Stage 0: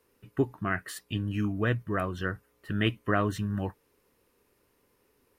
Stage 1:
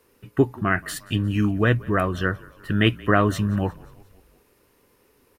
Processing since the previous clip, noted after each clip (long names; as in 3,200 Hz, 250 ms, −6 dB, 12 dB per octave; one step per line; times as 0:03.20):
echo with shifted repeats 177 ms, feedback 61%, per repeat −35 Hz, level −23 dB
level +8 dB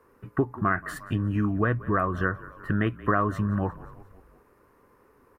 parametric band 1,100 Hz +6 dB 0.26 octaves
downward compressor 3 to 1, threshold −24 dBFS, peak gain reduction 9.5 dB
high shelf with overshoot 2,200 Hz −11.5 dB, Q 1.5
level +1 dB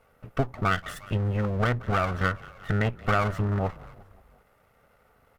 lower of the sound and its delayed copy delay 1.5 ms